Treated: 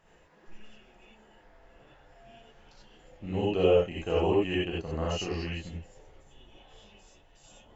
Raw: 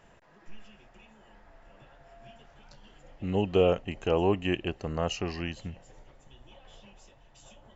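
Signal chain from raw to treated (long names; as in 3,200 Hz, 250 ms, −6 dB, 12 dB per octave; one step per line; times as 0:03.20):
reverb whose tail is shaped and stops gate 110 ms rising, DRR −5 dB
level −7 dB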